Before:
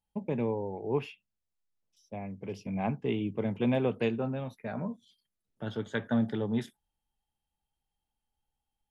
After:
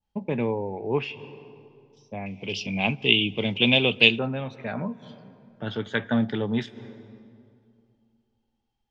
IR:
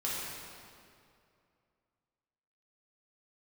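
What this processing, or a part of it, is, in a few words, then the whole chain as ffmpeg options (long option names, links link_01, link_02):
ducked reverb: -filter_complex "[0:a]asplit=3[link_01][link_02][link_03];[1:a]atrim=start_sample=2205[link_04];[link_02][link_04]afir=irnorm=-1:irlink=0[link_05];[link_03]apad=whole_len=392738[link_06];[link_05][link_06]sidechaincompress=threshold=-46dB:ratio=12:attack=6.9:release=156,volume=-15dB[link_07];[link_01][link_07]amix=inputs=2:normalize=0,adynamicequalizer=threshold=0.00224:dfrequency=2600:dqfactor=0.73:tfrequency=2600:tqfactor=0.73:attack=5:release=100:ratio=0.375:range=3.5:mode=boostabove:tftype=bell,lowpass=frequency=6000:width=0.5412,lowpass=frequency=6000:width=1.3066,asettb=1/sr,asplit=3[link_08][link_09][link_10];[link_08]atrim=end=2.264[link_11];[link_09]atrim=start=2.26:end=4.19,asetpts=PTS-STARTPTS,afade=type=in:duration=0.004:curve=qsin,afade=type=out:start_time=1.926:duration=0.004:curve=qsin,highshelf=frequency=2200:width_type=q:width=3:gain=10.5[link_12];[link_10]atrim=start=4.186[link_13];[link_11][link_12]acrossfade=duration=0.004:curve1=hsin:curve2=qsin[link_14];[link_14][link_13]acrossfade=duration=0.004:curve1=qsin:curve2=hsin,volume=4dB"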